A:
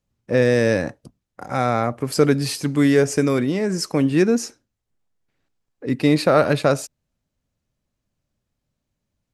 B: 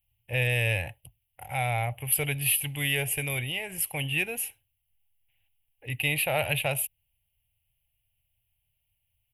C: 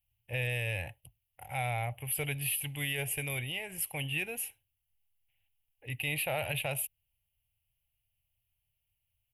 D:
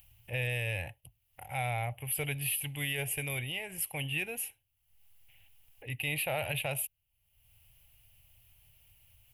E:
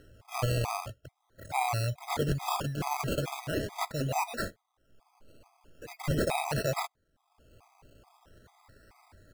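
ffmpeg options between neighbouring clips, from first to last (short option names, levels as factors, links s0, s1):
-af "firequalizer=gain_entry='entry(110,0);entry(210,-28);entry(820,-4);entry(1200,-23);entry(2100,1);entry(2900,12);entry(4200,-17);entry(5900,-24);entry(11000,15)':delay=0.05:min_phase=1"
-af "alimiter=limit=0.126:level=0:latency=1:release=19,volume=0.562"
-af "acompressor=mode=upward:threshold=0.00562:ratio=2.5"
-af "acrusher=samples=19:mix=1:aa=0.000001:lfo=1:lforange=11.4:lforate=0.42,afftfilt=real='re*gt(sin(2*PI*2.3*pts/sr)*(1-2*mod(floor(b*sr/1024/650),2)),0)':imag='im*gt(sin(2*PI*2.3*pts/sr)*(1-2*mod(floor(b*sr/1024/650),2)),0)':win_size=1024:overlap=0.75,volume=2.11"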